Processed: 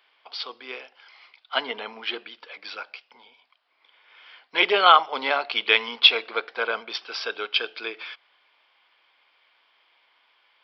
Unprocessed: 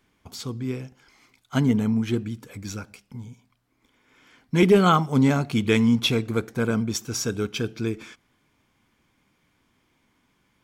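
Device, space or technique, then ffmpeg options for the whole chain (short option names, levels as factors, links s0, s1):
musical greeting card: -af "aresample=11025,aresample=44100,highpass=f=580:w=0.5412,highpass=f=580:w=1.3066,equalizer=f=3000:t=o:w=0.57:g=6,volume=1.88"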